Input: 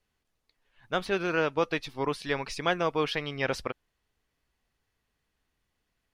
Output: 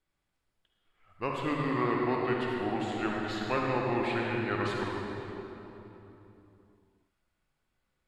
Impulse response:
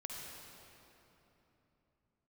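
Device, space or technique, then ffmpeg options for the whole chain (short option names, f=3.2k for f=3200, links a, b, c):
slowed and reverbed: -filter_complex "[0:a]equalizer=f=7.8k:w=7.5:g=-4,asetrate=33516,aresample=44100[a];[1:a]atrim=start_sample=2205[b];[a][b]afir=irnorm=-1:irlink=0"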